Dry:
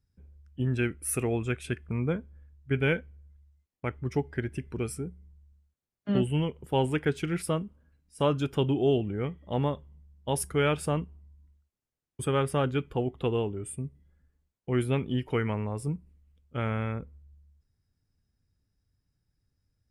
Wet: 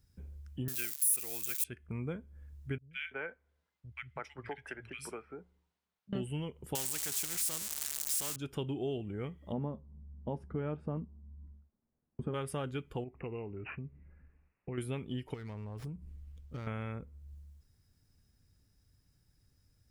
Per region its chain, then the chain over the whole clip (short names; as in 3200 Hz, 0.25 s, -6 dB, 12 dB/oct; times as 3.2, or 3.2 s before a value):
0.68–1.64 switching spikes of -27 dBFS + tilt +4 dB/oct
2.78–6.13 three-band isolator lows -18 dB, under 590 Hz, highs -16 dB, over 4000 Hz + three bands offset in time lows, highs, mids 0.13/0.33 s, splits 160/1900 Hz
6.75–8.36 switching spikes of -21 dBFS + bell 7700 Hz +13 dB 0.78 oct + spectral compressor 2:1
9.52–12.34 LPF 1000 Hz + bell 220 Hz +11.5 dB 0.41 oct + doubler 13 ms -13 dB
13.04–14.78 compressor 1.5:1, threshold -48 dBFS + careless resampling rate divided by 8×, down none, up filtered
15.34–16.67 low shelf 110 Hz +10 dB + compressor 2.5:1, threshold -41 dBFS + running maximum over 5 samples
whole clip: high shelf 4000 Hz +6 dB; compressor 2.5:1, threshold -49 dBFS; gain +6 dB